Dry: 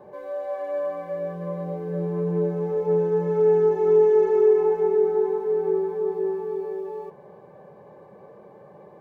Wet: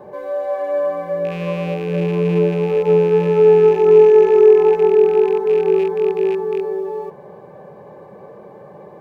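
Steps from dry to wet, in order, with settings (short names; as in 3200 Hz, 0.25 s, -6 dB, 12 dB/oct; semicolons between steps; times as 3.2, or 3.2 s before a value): rattling part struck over -36 dBFS, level -32 dBFS; gain +8 dB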